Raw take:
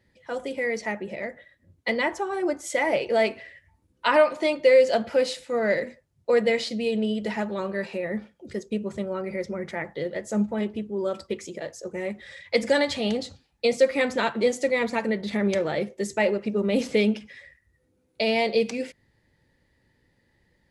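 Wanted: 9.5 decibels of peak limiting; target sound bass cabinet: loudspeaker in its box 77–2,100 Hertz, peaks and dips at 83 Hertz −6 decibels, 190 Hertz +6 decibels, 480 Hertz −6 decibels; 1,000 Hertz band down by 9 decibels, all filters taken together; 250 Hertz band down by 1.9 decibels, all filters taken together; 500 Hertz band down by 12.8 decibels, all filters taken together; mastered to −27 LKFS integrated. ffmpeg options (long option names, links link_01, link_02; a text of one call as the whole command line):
ffmpeg -i in.wav -af "equalizer=frequency=250:width_type=o:gain=-4,equalizer=frequency=500:width_type=o:gain=-8.5,equalizer=frequency=1000:width_type=o:gain=-8,alimiter=limit=-22dB:level=0:latency=1,highpass=frequency=77:width=0.5412,highpass=frequency=77:width=1.3066,equalizer=frequency=83:width_type=q:width=4:gain=-6,equalizer=frequency=190:width_type=q:width=4:gain=6,equalizer=frequency=480:width_type=q:width=4:gain=-6,lowpass=frequency=2100:width=0.5412,lowpass=frequency=2100:width=1.3066,volume=7dB" out.wav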